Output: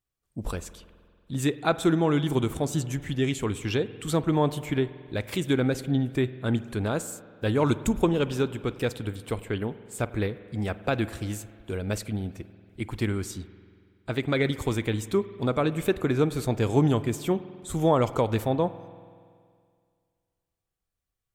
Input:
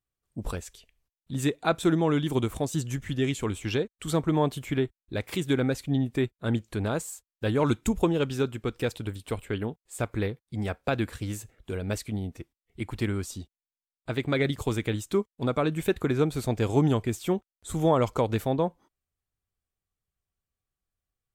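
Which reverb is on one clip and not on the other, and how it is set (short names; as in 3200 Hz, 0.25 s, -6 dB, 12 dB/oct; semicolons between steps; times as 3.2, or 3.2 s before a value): spring tank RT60 2.1 s, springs 47 ms, chirp 65 ms, DRR 14.5 dB; gain +1 dB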